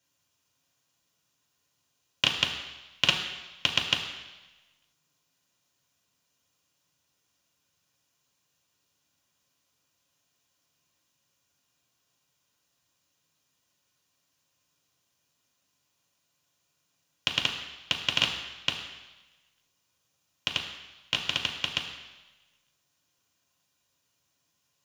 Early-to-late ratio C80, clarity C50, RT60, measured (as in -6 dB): 8.0 dB, 6.5 dB, 1.1 s